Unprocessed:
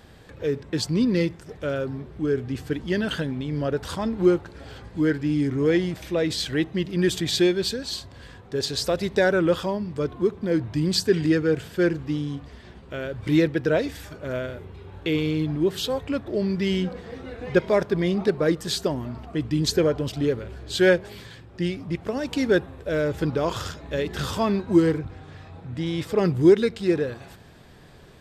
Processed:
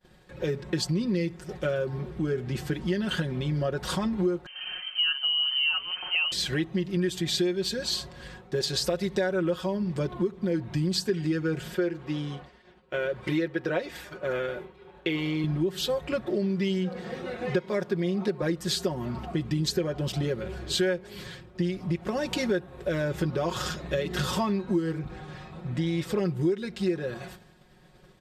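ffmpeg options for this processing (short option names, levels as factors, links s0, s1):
-filter_complex "[0:a]asettb=1/sr,asplit=3[s0][s1][s2];[s0]atrim=end=4.464[s3];[s1]atrim=start=4.46:end=6.32,asetpts=PTS-STARTPTS,afade=t=in:d=0.004:c=qsin,afade=t=out:st=1.856:d=0.004:c=qsin,lowpass=f=2700:t=q:w=0.5098,lowpass=f=2700:t=q:w=0.6013,lowpass=f=2700:t=q:w=0.9,lowpass=f=2700:t=q:w=2.563,afreqshift=-3200[s4];[s2]atrim=start=6.316[s5];[s3][s4]acrossfade=d=0.004:c1=hsin:c2=qsin[s6];[s6][s5]acrossfade=d=0.004:c1=qsin:c2=hsin,asettb=1/sr,asplit=3[s7][s8][s9];[s7]atrim=end=11.744[s10];[s8]atrim=start=11.74:end=15.44,asetpts=PTS-STARTPTS,afade=t=in:d=0.004:c=qsin,afade=t=out:st=3.696:d=0.004:c=qsin,bass=f=250:g=-10,treble=f=4000:g=-7[s11];[s9]atrim=start=15.436[s12];[s10][s11]acrossfade=d=0.004:c1=hsin:c2=qsin[s13];[s13][s12]acrossfade=d=0.004:c1=qsin:c2=hsin,asettb=1/sr,asplit=3[s14][s15][s16];[s14]atrim=end=16.244[s17];[s15]atrim=start=16.24:end=18.42,asetpts=PTS-STARTPTS,afade=t=in:d=0.004:c=qsin,afade=t=out:st=2.176:d=0.004:c=qsin,highpass=120[s18];[s16]atrim=start=18.416[s19];[s17][s18]acrossfade=d=0.004:c1=hsin:c2=qsin[s20];[s20][s19]acrossfade=d=0.004:c1=qsin:c2=hsin,agate=range=0.0224:threshold=0.01:ratio=3:detection=peak,aecho=1:1:5.5:0.79,acompressor=threshold=0.0447:ratio=5,volume=1.26"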